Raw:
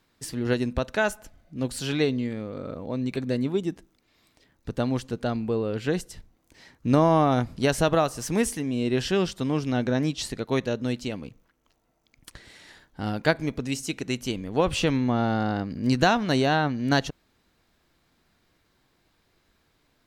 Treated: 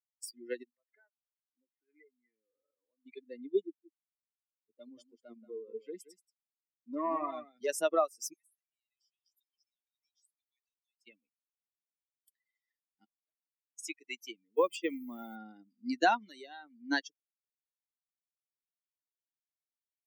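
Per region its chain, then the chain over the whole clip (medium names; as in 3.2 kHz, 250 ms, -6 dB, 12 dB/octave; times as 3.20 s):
0.63–3.06 s: steep low-pass 2.3 kHz 72 dB/octave + peaking EQ 180 Hz -10 dB 0.7 oct + compression, threshold -34 dBFS
3.65–7.69 s: valve stage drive 19 dB, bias 0.35 + delay 181 ms -4.5 dB + three bands expanded up and down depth 40%
8.33–11.07 s: differentiator + compression 16:1, threshold -44 dBFS
13.04–13.79 s: de-esser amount 65% + inverted gate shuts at -25 dBFS, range -26 dB
14.56–15.36 s: send-on-delta sampling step -39.5 dBFS + gate with hold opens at -17 dBFS, closes at -21 dBFS + upward compressor, threshold -28 dBFS
16.18–16.78 s: treble shelf 6.1 kHz +9.5 dB + compression 2.5:1, threshold -25 dBFS
whole clip: expander on every frequency bin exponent 3; steep high-pass 300 Hz 36 dB/octave; dynamic bell 3.5 kHz, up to -6 dB, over -53 dBFS, Q 2.2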